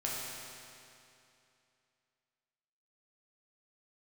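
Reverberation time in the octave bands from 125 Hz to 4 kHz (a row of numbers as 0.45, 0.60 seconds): 2.7, 2.7, 2.7, 2.7, 2.6, 2.5 seconds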